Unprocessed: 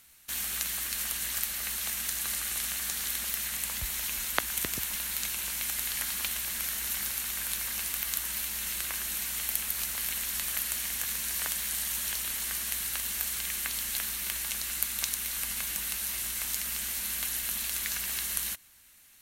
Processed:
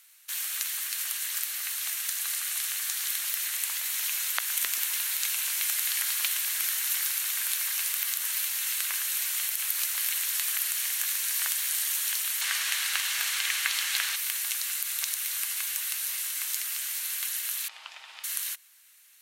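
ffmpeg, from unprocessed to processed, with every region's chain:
-filter_complex "[0:a]asettb=1/sr,asplit=3[a][b][c];[a]atrim=end=12.414[d];[b]atrim=start=12.41:end=14.16,asetpts=PTS-STARTPTS,afade=t=in:d=0.004:c=qsin,afade=t=out:st=1.746:d=0.004:c=qsin,highshelf=f=6.2k:g=-9,asplit=2[e][f];[f]highpass=f=720:p=1,volume=7dB,asoftclip=type=tanh:threshold=-15dB[g];[e][g]amix=inputs=2:normalize=0,lowpass=f=6.1k:p=1,volume=-6dB,acontrast=36[h];[c]atrim=start=14.156[i];[d][h]acrossfade=d=0.004:c1=hsin:c2=qsin[j];[j][i]acrossfade=d=0.004:c1=qsin:c2=hsin,asettb=1/sr,asplit=3[k][l][m];[k]atrim=end=17.684[n];[l]atrim=start=17.68:end=18.24,asetpts=PTS-STARTPTS,afade=t=in:d=0.004:c=qsin,afade=t=out:st=0.556:d=0.004:c=qsin,lowpass=2.5k,aeval=exprs='val(0)*sin(2*PI*860*n/s)':c=same[o];[m]atrim=start=18.236[p];[n][o]acrossfade=d=0.004:c1=hsin:c2=qsin[q];[q][p]acrossfade=d=0.004:c1=qsin:c2=hsin,highpass=1.2k,dynaudnorm=f=380:g=21:m=6dB,alimiter=level_in=8.5dB:limit=-1dB:release=50:level=0:latency=1,volume=-7.5dB"

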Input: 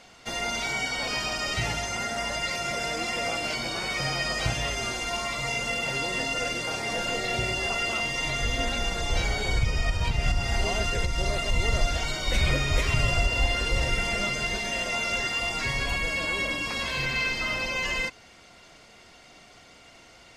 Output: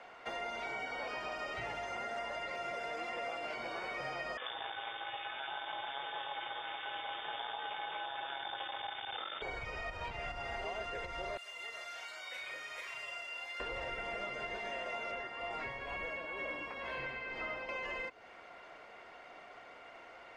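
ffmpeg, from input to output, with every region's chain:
-filter_complex "[0:a]asettb=1/sr,asplit=3[a][b][c];[a]atrim=end=4.374[d];[b]atrim=start=4.37:end=9.42,asetpts=PTS-STARTPTS,afade=t=in:d=0.004:c=qsin,afade=t=out:st=5.046:d=0.004:c=qsin,equalizer=f=180:t=o:w=2.1:g=12,aeval=exprs='max(val(0),0)':c=same,lowpass=f=3.1k:t=q:w=0.5098,lowpass=f=3.1k:t=q:w=0.6013,lowpass=f=3.1k:t=q:w=0.9,lowpass=f=3.1k:t=q:w=2.563,afreqshift=-3600[e];[c]atrim=start=9.416[f];[d][e]acrossfade=d=0.004:c1=hsin:c2=qsin[g];[g][f]acrossfade=d=0.004:c1=qsin:c2=hsin,asettb=1/sr,asplit=3[h][i][j];[h]atrim=end=11.374[k];[i]atrim=start=11.37:end=13.6,asetpts=PTS-STARTPTS,afade=t=in:d=0.004:c=qsin,afade=t=out:st=2.226:d=0.004:c=qsin,aderivative,asplit=2[l][m];[m]adelay=35,volume=-5dB[n];[l][n]amix=inputs=2:normalize=0,atrim=end_sample=98343[o];[j]atrim=start=13.596[p];[k][o]acrossfade=d=0.004:c1=hsin:c2=qsin[q];[q][p]acrossfade=d=0.004:c1=qsin:c2=hsin,asettb=1/sr,asplit=3[r][s][t];[r]atrim=end=15.114[u];[s]atrim=start=15.11:end=17.69,asetpts=PTS-STARTPTS,afade=t=in:d=0.004:c=qsin,afade=t=out:st=2.576:d=0.004:c=qsin,acrossover=split=3500[v][w];[w]acompressor=threshold=-41dB:ratio=4:attack=1:release=60[x];[v][x]amix=inputs=2:normalize=0,tremolo=f=2.1:d=0.59,asplit=2[y][z];[z]adelay=16,volume=-12dB[aa];[y][aa]amix=inputs=2:normalize=0,atrim=end_sample=113778[ab];[t]atrim=start=17.686[ac];[u][ab]acrossfade=d=0.004:c1=hsin:c2=qsin[ad];[ad][ac]acrossfade=d=0.004:c1=qsin:c2=hsin,acrossover=split=390 2300:gain=0.126 1 0.0708[ae][af][ag];[ae][af][ag]amix=inputs=3:normalize=0,acrossover=split=610|3000[ah][ai][aj];[ah]acompressor=threshold=-49dB:ratio=4[ak];[ai]acompressor=threshold=-47dB:ratio=4[al];[aj]acompressor=threshold=-55dB:ratio=4[am];[ak][al][am]amix=inputs=3:normalize=0,volume=3dB"

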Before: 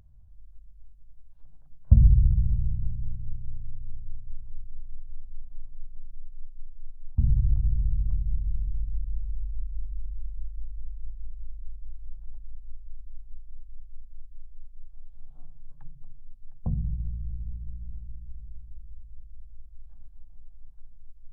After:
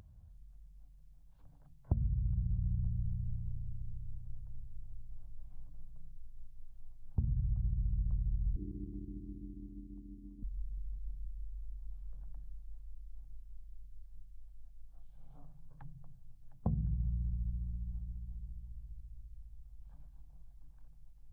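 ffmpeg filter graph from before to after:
-filter_complex "[0:a]asettb=1/sr,asplit=3[a][b][c];[a]atrim=end=8.564[d];[b]atrim=start=8.56:end=10.43,asetpts=PTS-STARTPTS,afade=t=in:d=0.004:c=qsin,afade=t=out:st=1.866:d=0.004:c=qsin,highpass=76,tremolo=f=250:d=0.75[e];[c]atrim=start=10.426[f];[d][e]acrossfade=d=0.004:c1=hsin:c2=qsin[g];[g][f]acrossfade=d=0.004:c1=qsin:c2=hsin,highpass=f=82:p=1,acompressor=threshold=-32dB:ratio=20,volume=3.5dB"

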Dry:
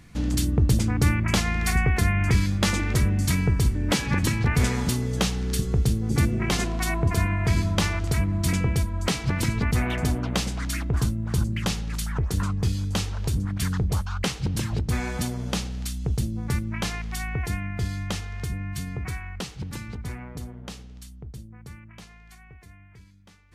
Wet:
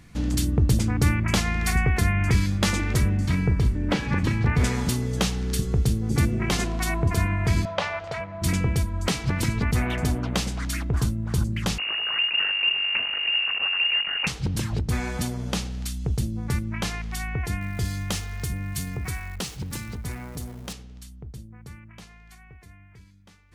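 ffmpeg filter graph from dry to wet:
-filter_complex "[0:a]asettb=1/sr,asplit=3[a][b][c];[a]atrim=end=3.174[d];[b]atrim=start=3.17:end=4.64,asetpts=PTS-STARTPTS,afade=t=in:d=0.004:c=qsin,afade=t=out:st=1.466:d=0.004:c=qsin,highshelf=f=3.5k:g=-7,acrossover=split=5000[e][f];[f]acompressor=threshold=-47dB:ratio=4:attack=1:release=60[g];[e][g]amix=inputs=2:normalize=0,asplit=2[h][i];[i]adelay=37,volume=-13dB[j];[h][j]amix=inputs=2:normalize=0,atrim=end_sample=64827[k];[c]atrim=start=4.636[l];[d][k]acrossfade=d=0.004:c1=hsin:c2=qsin[m];[m][l]acrossfade=d=0.004:c1=qsin:c2=hsin,asettb=1/sr,asplit=3[n][o][p];[n]atrim=end=7.654[q];[o]atrim=start=7.65:end=8.42,asetpts=PTS-STARTPTS,afade=t=in:d=0.004:c=qsin,afade=t=out:st=0.766:d=0.004:c=qsin,highpass=120,lowpass=3.4k,lowshelf=f=430:t=q:w=3:g=-10[r];[p]atrim=start=8.416[s];[q][r]acrossfade=d=0.004:c1=hsin:c2=qsin[t];[t][s]acrossfade=d=0.004:c1=qsin:c2=hsin,asettb=1/sr,asplit=3[u][v][w];[u]atrim=end=11.784[x];[v]atrim=start=11.78:end=14.27,asetpts=PTS-STARTPTS,afade=t=in:d=0.004:c=qsin,afade=t=out:st=2.486:d=0.004:c=qsin,aemphasis=mode=reproduction:type=50fm,acrusher=bits=6:dc=4:mix=0:aa=0.000001,lowpass=f=2.5k:t=q:w=0.5098,lowpass=f=2.5k:t=q:w=0.6013,lowpass=f=2.5k:t=q:w=0.9,lowpass=f=2.5k:t=q:w=2.563,afreqshift=-2900[y];[w]atrim=start=14.266[z];[x][y]acrossfade=d=0.004:c1=hsin:c2=qsin[aa];[aa][z]acrossfade=d=0.004:c1=qsin:c2=hsin,asettb=1/sr,asplit=3[ab][ac][ad];[ab]atrim=end=17.614[ae];[ac]atrim=start=17.61:end=20.73,asetpts=PTS-STARTPTS,afade=t=in:d=0.004:c=qsin,afade=t=out:st=3.116:d=0.004:c=qsin,aeval=exprs='val(0)+0.5*0.00531*sgn(val(0))':c=same,highshelf=f=6.1k:g=9[af];[ad]atrim=start=20.726[ag];[ae][af]acrossfade=d=0.004:c1=hsin:c2=qsin[ah];[ah][ag]acrossfade=d=0.004:c1=qsin:c2=hsin"

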